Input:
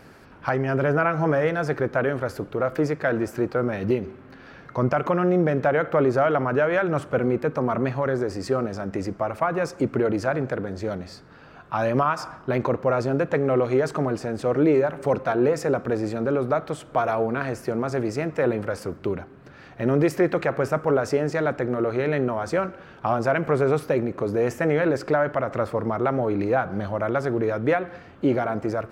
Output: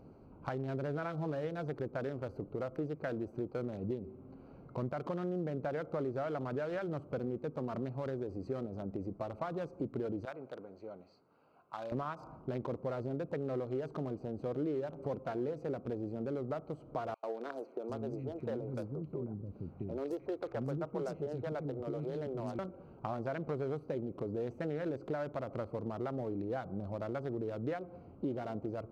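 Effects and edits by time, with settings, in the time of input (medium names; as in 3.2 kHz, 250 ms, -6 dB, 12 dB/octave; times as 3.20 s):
10.25–11.92 s: band-pass filter 2.6 kHz, Q 0.58
17.14–22.59 s: three bands offset in time highs, mids, lows 90/750 ms, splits 310/2100 Hz
whole clip: local Wiener filter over 25 samples; FFT filter 290 Hz 0 dB, 2.6 kHz -6 dB, 4.2 kHz 0 dB, 9.7 kHz -4 dB; compression 2.5:1, threshold -33 dBFS; trim -5 dB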